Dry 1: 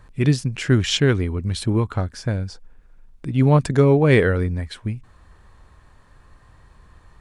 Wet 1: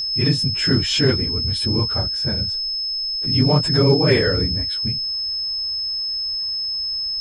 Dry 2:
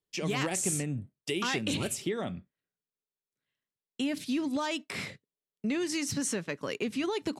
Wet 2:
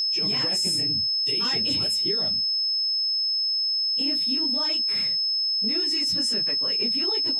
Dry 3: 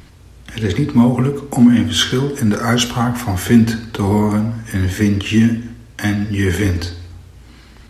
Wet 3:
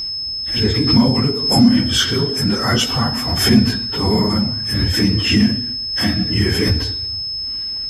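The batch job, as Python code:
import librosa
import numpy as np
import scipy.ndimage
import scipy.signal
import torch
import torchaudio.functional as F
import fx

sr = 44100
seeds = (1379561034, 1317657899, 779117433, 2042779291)

p1 = fx.phase_scramble(x, sr, seeds[0], window_ms=50)
p2 = p1 + 10.0 ** (-20.0 / 20.0) * np.sin(2.0 * np.pi * 5200.0 * np.arange(len(p1)) / sr)
p3 = np.clip(p2, -10.0 ** (-6.5 / 20.0), 10.0 ** (-6.5 / 20.0))
p4 = p2 + (p3 * librosa.db_to_amplitude(-7.0))
p5 = fx.pre_swell(p4, sr, db_per_s=61.0)
y = p5 * librosa.db_to_amplitude(-5.0)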